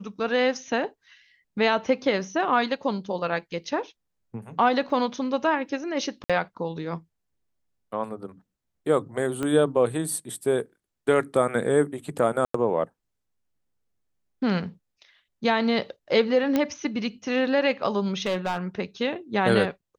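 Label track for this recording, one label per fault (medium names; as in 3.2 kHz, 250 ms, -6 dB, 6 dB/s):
4.900000	4.900000	dropout 2.7 ms
6.240000	6.300000	dropout 56 ms
9.430000	9.430000	pop -16 dBFS
12.450000	12.540000	dropout 94 ms
16.560000	16.560000	pop -10 dBFS
18.260000	18.580000	clipped -22 dBFS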